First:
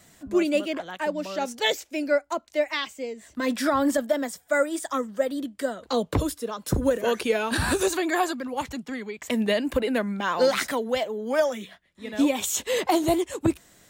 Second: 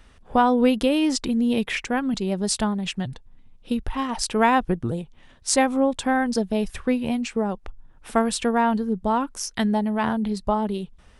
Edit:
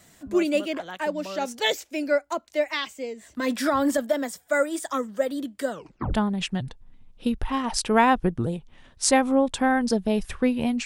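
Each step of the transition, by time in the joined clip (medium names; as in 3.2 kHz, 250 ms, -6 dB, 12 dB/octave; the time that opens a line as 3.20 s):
first
5.71 s: tape stop 0.43 s
6.14 s: go over to second from 2.59 s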